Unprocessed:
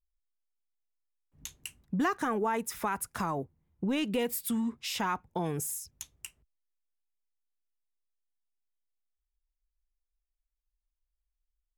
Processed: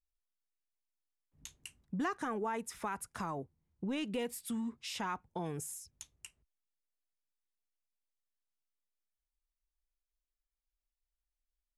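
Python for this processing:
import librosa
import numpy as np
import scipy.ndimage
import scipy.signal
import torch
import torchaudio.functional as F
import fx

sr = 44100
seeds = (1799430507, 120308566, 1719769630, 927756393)

y = scipy.signal.sosfilt(scipy.signal.butter(4, 11000.0, 'lowpass', fs=sr, output='sos'), x)
y = y * 10.0 ** (-6.5 / 20.0)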